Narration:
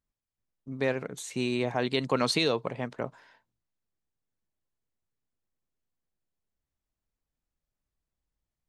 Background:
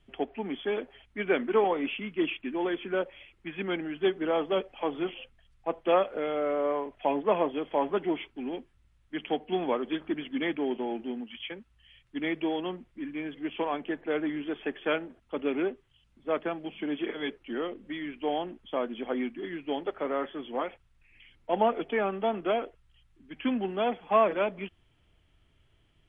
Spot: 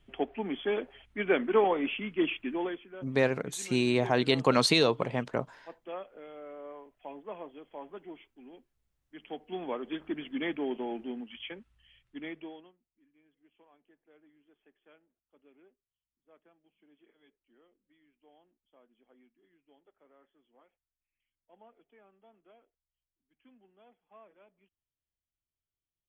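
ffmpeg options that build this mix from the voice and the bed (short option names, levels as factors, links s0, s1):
-filter_complex "[0:a]adelay=2350,volume=1.33[s0];[1:a]volume=4.73,afade=t=out:st=2.51:d=0.35:silence=0.149624,afade=t=in:st=9.05:d=1.2:silence=0.211349,afade=t=out:st=11.69:d=1.04:silence=0.0316228[s1];[s0][s1]amix=inputs=2:normalize=0"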